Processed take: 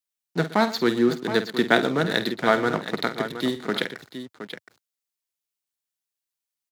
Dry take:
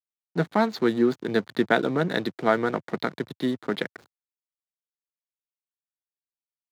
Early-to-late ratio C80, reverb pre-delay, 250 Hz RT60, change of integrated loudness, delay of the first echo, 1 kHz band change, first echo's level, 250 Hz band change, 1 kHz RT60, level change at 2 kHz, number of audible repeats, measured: no reverb, no reverb, no reverb, +2.0 dB, 50 ms, +2.5 dB, -11.5 dB, +1.0 dB, no reverb, +4.0 dB, 3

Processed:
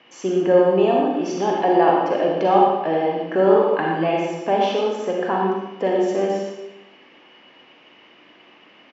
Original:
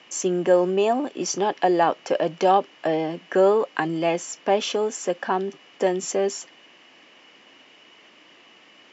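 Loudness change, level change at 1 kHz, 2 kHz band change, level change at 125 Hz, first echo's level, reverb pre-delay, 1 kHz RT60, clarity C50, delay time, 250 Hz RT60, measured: +3.5 dB, +4.0 dB, +2.0 dB, +4.0 dB, -8.0 dB, 37 ms, 0.90 s, -0.5 dB, 116 ms, 1.1 s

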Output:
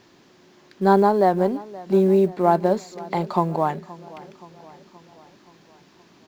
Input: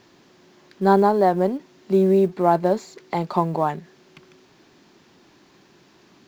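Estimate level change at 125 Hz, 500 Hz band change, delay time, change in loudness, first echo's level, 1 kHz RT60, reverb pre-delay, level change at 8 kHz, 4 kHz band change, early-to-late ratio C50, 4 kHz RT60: 0.0 dB, 0.0 dB, 524 ms, 0.0 dB, -19.5 dB, no reverb, no reverb, no reading, 0.0 dB, no reverb, no reverb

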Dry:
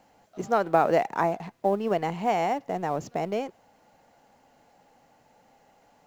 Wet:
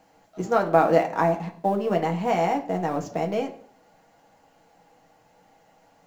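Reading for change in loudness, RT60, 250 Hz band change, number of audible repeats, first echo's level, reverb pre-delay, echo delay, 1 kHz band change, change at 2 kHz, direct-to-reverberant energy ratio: +2.5 dB, 0.55 s, +4.5 dB, no echo, no echo, 6 ms, no echo, +2.0 dB, +2.5 dB, 2.0 dB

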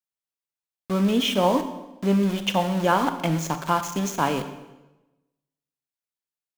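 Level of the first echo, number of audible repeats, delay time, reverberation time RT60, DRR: no echo, no echo, no echo, 1.0 s, 8.5 dB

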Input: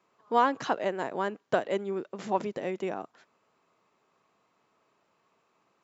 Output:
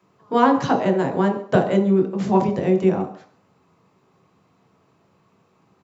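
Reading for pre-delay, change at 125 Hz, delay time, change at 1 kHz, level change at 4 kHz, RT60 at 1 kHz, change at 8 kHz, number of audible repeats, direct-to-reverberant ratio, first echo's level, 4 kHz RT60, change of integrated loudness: 17 ms, +20.5 dB, 136 ms, +7.0 dB, +6.0 dB, 0.50 s, no reading, 1, 2.0 dB, -19.5 dB, 0.50 s, +11.0 dB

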